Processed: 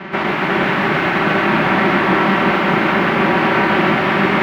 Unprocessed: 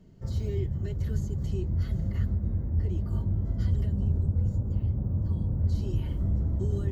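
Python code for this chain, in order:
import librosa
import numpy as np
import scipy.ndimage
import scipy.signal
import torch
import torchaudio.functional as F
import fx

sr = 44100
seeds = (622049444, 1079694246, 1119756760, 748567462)

y = fx.spec_flatten(x, sr, power=0.17)
y = y + 0.66 * np.pad(y, (int(5.2 * sr / 1000.0), 0))[:len(y)]
y = fx.rider(y, sr, range_db=5, speed_s=2.0)
y = fx.chopper(y, sr, hz=2.1, depth_pct=60, duty_pct=80)
y = fx.stretch_vocoder(y, sr, factor=0.64)
y = fx.fold_sine(y, sr, drive_db=18, ceiling_db=-11.5)
y = fx.cabinet(y, sr, low_hz=170.0, low_slope=12, high_hz=2200.0, hz=(180.0, 330.0, 470.0), db=(5, 7, -8))
y = y + 10.0 ** (-4.0 / 20.0) * np.pad(y, (int(357 * sr / 1000.0), 0))[:len(y)]
y = fx.rev_schroeder(y, sr, rt60_s=0.54, comb_ms=25, drr_db=5.0)
y = fx.echo_crushed(y, sr, ms=129, feedback_pct=80, bits=8, wet_db=-11.0)
y = F.gain(torch.from_numpy(y), 4.5).numpy()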